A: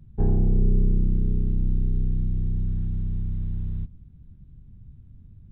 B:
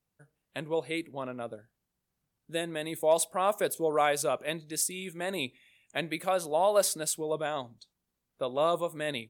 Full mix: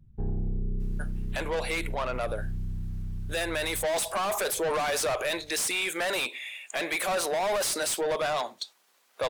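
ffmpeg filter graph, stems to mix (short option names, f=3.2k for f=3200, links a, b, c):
-filter_complex "[0:a]alimiter=limit=-16dB:level=0:latency=1:release=64,volume=-7.5dB[a];[1:a]highpass=480,asplit=2[b][c];[c]highpass=f=720:p=1,volume=30dB,asoftclip=type=tanh:threshold=-13dB[d];[b][d]amix=inputs=2:normalize=0,lowpass=f=5.6k:p=1,volume=-6dB,adelay=800,volume=0dB[e];[a][e]amix=inputs=2:normalize=0,alimiter=limit=-23.5dB:level=0:latency=1:release=48"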